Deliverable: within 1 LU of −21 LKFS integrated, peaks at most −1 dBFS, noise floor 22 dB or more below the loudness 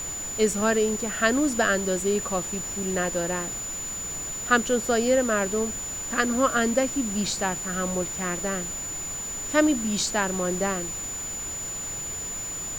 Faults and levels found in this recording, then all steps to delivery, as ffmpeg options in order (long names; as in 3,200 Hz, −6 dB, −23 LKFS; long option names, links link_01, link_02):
interfering tone 7,000 Hz; level of the tone −31 dBFS; background noise floor −33 dBFS; target noise floor −48 dBFS; integrated loudness −25.5 LKFS; sample peak −6.0 dBFS; target loudness −21.0 LKFS
→ -af "bandreject=frequency=7000:width=30"
-af "afftdn=noise_reduction=15:noise_floor=-33"
-af "volume=4.5dB"